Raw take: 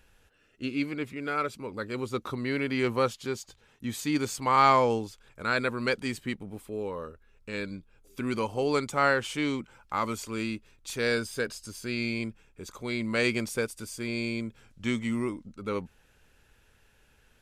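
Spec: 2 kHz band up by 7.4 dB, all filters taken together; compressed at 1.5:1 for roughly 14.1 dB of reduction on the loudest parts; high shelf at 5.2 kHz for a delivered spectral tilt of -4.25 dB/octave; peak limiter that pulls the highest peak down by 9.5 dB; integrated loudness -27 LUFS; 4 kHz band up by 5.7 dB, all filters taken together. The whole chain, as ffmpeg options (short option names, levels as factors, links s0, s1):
-af "equalizer=f=2000:t=o:g=8.5,equalizer=f=4000:t=o:g=7.5,highshelf=f=5200:g=-7.5,acompressor=threshold=0.002:ratio=1.5,volume=5.01,alimiter=limit=0.188:level=0:latency=1"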